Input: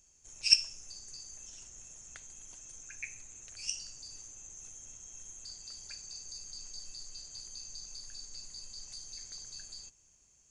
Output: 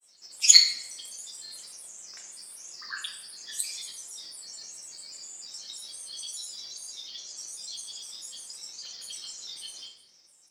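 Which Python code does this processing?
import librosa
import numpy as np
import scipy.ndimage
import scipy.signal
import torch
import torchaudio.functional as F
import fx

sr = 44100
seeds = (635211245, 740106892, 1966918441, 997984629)

y = scipy.signal.sosfilt(scipy.signal.butter(2, 350.0, 'highpass', fs=sr, output='sos'), x)
y = fx.high_shelf(y, sr, hz=7900.0, db=4.5)
y = fx.granulator(y, sr, seeds[0], grain_ms=100.0, per_s=20.0, spray_ms=100.0, spread_st=7)
y = fx.room_shoebox(y, sr, seeds[1], volume_m3=290.0, walls='mixed', distance_m=0.88)
y = y * 10.0 ** (5.0 / 20.0)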